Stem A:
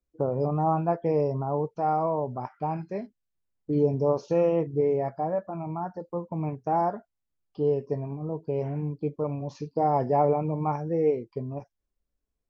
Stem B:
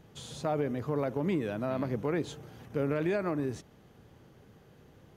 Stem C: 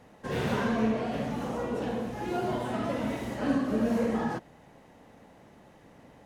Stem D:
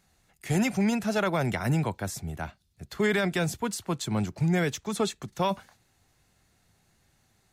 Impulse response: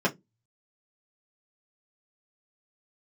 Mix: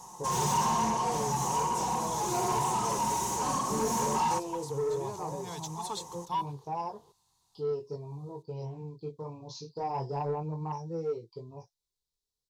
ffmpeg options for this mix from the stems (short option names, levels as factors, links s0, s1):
-filter_complex "[0:a]equalizer=f=125:t=o:w=1:g=5,equalizer=f=500:t=o:w=1:g=9,equalizer=f=1000:t=o:w=1:g=-12,equalizer=f=4000:t=o:w=1:g=7,flanger=delay=18:depth=7.1:speed=0.27,highshelf=f=3900:g=6,volume=0.473,asplit=2[s0][s1];[1:a]acompressor=threshold=0.0282:ratio=6,equalizer=f=460:t=o:w=0.62:g=15,adelay=1950,volume=0.398[s2];[2:a]highshelf=f=5100:t=q:w=3:g=7.5,aecho=1:1:5.5:0.56,volume=1.26[s3];[3:a]adelay=900,volume=0.316[s4];[s1]apad=whole_len=371544[s5];[s4][s5]sidechaincompress=threshold=0.0158:ratio=8:attack=5.4:release=345[s6];[s0][s2][s3][s6]amix=inputs=4:normalize=0,firequalizer=gain_entry='entry(140,0);entry(240,-12);entry(400,-8);entry(590,-18);entry(960,9);entry(1400,-18);entry(2100,-19);entry(3800,1);entry(7600,4)':delay=0.05:min_phase=1,asplit=2[s7][s8];[s8]highpass=f=720:p=1,volume=6.31,asoftclip=type=tanh:threshold=0.0891[s9];[s7][s9]amix=inputs=2:normalize=0,lowpass=f=3900:p=1,volume=0.501"